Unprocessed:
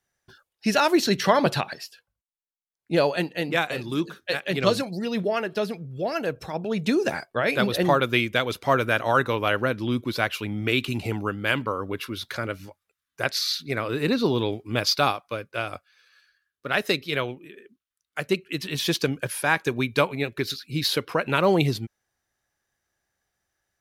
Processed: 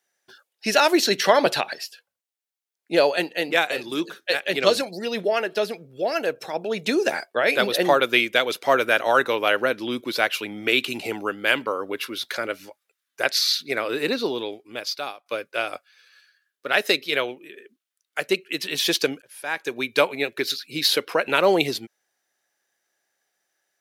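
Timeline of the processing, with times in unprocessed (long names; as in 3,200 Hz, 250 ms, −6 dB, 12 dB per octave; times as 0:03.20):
0:13.94–0:15.26: fade out quadratic, to −13 dB
0:19.22–0:20.04: fade in linear
whole clip: high-pass filter 390 Hz 12 dB per octave; parametric band 1,100 Hz −5 dB 0.71 octaves; level +5 dB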